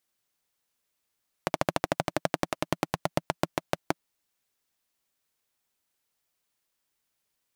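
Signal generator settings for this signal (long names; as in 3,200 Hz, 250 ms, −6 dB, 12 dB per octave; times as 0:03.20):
pulse-train model of a single-cylinder engine, changing speed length 2.59 s, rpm 1,700, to 600, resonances 170/310/590 Hz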